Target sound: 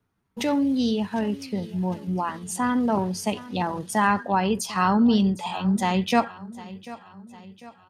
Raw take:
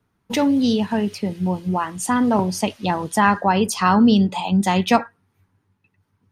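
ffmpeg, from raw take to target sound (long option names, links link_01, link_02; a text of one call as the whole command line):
ffmpeg -i in.wav -af "aecho=1:1:600|1200|1800|2400:0.126|0.0629|0.0315|0.0157,atempo=0.8,volume=-5dB" out.wav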